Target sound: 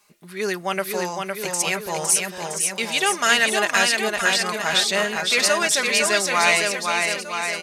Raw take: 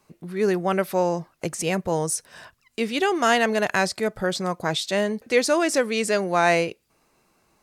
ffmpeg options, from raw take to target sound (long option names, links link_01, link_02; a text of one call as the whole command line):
ffmpeg -i in.wav -af "tiltshelf=frequency=770:gain=-9.5,aecho=1:1:4.9:0.51,aecho=1:1:510|969|1382|1754|2089:0.631|0.398|0.251|0.158|0.1,volume=-2.5dB" out.wav